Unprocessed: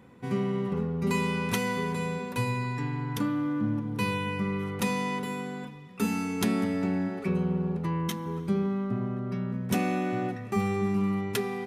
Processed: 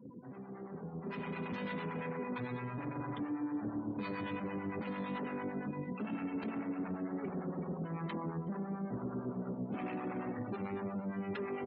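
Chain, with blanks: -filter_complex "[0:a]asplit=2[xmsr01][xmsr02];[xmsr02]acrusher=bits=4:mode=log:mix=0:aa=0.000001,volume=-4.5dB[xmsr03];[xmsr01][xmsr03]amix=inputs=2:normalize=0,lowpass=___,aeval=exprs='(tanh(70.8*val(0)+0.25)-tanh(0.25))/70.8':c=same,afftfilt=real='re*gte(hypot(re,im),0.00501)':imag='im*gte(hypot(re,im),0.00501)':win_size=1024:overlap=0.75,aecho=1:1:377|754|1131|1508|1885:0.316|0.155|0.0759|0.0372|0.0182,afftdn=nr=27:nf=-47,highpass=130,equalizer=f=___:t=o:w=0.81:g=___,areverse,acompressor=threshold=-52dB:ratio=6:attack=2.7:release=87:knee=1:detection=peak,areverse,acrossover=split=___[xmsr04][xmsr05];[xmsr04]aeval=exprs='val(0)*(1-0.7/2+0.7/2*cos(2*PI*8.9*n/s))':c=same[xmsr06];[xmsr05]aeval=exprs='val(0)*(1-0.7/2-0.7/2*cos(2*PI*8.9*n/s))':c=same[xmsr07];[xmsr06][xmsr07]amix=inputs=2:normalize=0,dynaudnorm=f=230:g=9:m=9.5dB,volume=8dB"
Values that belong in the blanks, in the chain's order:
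2600, 270, 5, 620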